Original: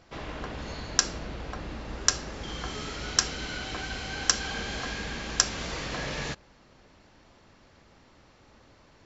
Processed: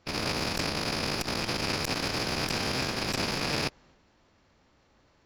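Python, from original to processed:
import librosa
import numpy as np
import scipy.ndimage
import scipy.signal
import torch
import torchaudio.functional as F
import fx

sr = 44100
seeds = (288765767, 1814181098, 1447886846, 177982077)

y = fx.rattle_buzz(x, sr, strikes_db=-48.0, level_db=-9.0)
y = fx.cheby_harmonics(y, sr, harmonics=(4, 8), levels_db=(-9, -14), full_scale_db=-0.5)
y = fx.transient(y, sr, attack_db=-6, sustain_db=5)
y = fx.stretch_vocoder(y, sr, factor=0.58)
y = fx.transformer_sat(y, sr, knee_hz=500.0)
y = y * librosa.db_to_amplitude(-5.5)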